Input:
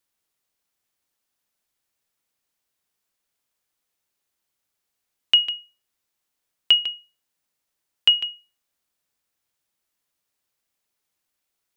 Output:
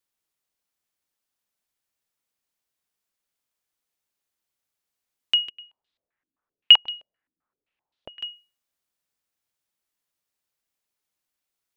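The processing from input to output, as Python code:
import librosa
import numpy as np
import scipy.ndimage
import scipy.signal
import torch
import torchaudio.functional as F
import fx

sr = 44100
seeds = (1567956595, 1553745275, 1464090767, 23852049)

y = fx.filter_held_lowpass(x, sr, hz=7.7, low_hz=290.0, high_hz=3800.0, at=(5.48, 8.21), fade=0.02)
y = y * 10.0 ** (-4.5 / 20.0)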